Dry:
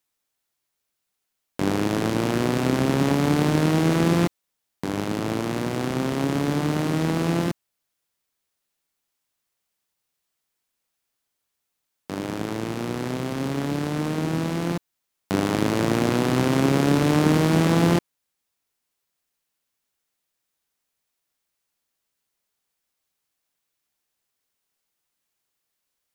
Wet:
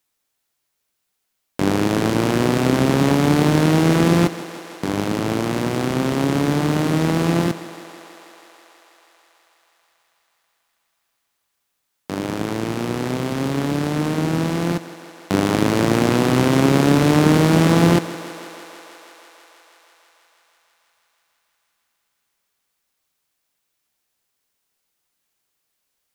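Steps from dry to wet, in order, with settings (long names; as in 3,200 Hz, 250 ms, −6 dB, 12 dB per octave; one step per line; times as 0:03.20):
feedback echo with a high-pass in the loop 162 ms, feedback 83%, high-pass 250 Hz, level −15 dB
level +4.5 dB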